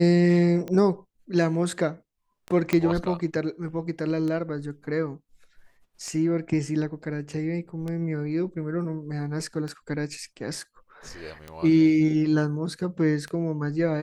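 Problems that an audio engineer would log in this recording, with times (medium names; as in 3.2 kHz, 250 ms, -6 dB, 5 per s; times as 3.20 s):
tick 33 1/3 rpm -21 dBFS
2.73 s: pop -10 dBFS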